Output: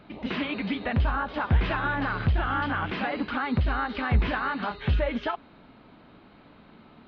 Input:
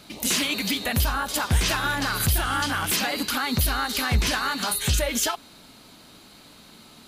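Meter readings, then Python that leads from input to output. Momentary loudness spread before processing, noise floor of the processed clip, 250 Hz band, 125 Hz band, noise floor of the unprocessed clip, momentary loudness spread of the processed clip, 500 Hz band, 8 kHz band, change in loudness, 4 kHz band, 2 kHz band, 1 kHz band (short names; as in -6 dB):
3 LU, -54 dBFS, 0.0 dB, 0.0 dB, -50 dBFS, 5 LU, -0.5 dB, under -40 dB, -4.0 dB, -13.5 dB, -3.5 dB, -1.5 dB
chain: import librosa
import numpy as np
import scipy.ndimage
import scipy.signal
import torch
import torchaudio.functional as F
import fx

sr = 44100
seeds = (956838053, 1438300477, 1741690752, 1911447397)

y = scipy.ndimage.gaussian_filter1d(x, 3.5, mode='constant')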